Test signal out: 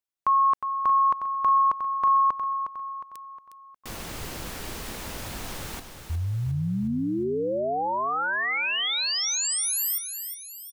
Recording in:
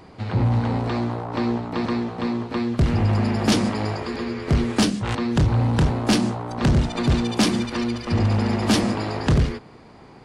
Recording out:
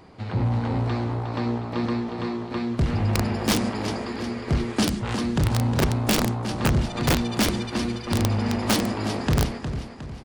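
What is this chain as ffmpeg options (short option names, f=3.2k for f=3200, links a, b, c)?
-af "aecho=1:1:360|720|1080|1440|1800:0.376|0.173|0.0795|0.0366|0.0168,aeval=exprs='(mod(3.76*val(0)+1,2)-1)/3.76':c=same,volume=-3.5dB"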